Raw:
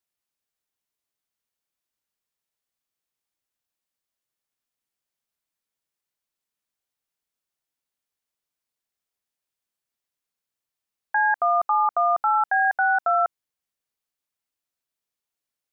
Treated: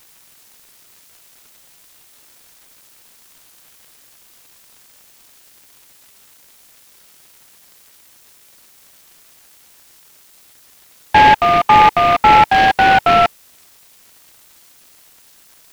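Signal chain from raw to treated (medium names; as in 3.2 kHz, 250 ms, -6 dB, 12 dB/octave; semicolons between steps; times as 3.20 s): peaking EQ 890 Hz +11.5 dB 0.53 oct; level rider; added noise violet -44 dBFS; delay time shaken by noise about 1.2 kHz, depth 0.065 ms; trim -1 dB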